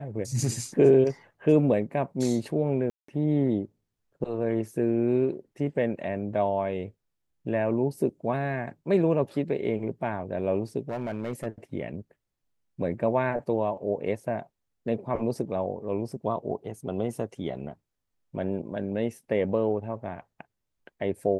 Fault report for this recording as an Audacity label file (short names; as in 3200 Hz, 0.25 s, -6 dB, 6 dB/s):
2.900000	3.080000	gap 0.184 s
10.890000	11.470000	clipped -26.5 dBFS